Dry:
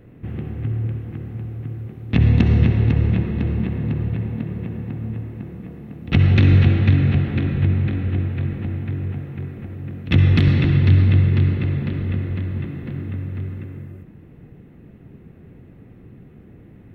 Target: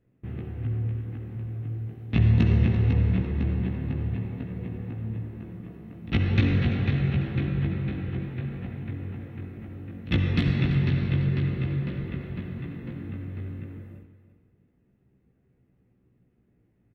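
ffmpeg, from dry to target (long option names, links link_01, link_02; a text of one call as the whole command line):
ffmpeg -i in.wav -af "agate=range=-16dB:threshold=-37dB:ratio=16:detection=peak,flanger=delay=15.5:depth=2.2:speed=0.26,aecho=1:1:339|678|1017:0.211|0.0528|0.0132,volume=-3dB" out.wav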